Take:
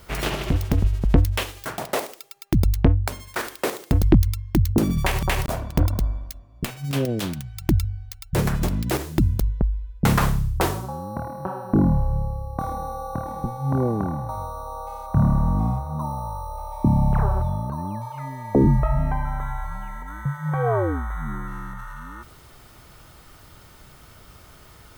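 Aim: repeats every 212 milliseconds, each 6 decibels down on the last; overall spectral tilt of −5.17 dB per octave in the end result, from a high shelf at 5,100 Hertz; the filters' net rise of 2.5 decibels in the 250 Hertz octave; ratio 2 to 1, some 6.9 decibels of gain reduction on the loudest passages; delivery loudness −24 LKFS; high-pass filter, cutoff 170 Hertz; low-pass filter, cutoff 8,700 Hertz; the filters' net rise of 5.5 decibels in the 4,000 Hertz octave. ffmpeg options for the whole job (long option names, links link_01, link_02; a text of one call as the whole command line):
ffmpeg -i in.wav -af "highpass=170,lowpass=8700,equalizer=frequency=250:width_type=o:gain=5,equalizer=frequency=4000:width_type=o:gain=4,highshelf=frequency=5100:gain=7.5,acompressor=threshold=-23dB:ratio=2,aecho=1:1:212|424|636|848|1060|1272:0.501|0.251|0.125|0.0626|0.0313|0.0157,volume=3.5dB" out.wav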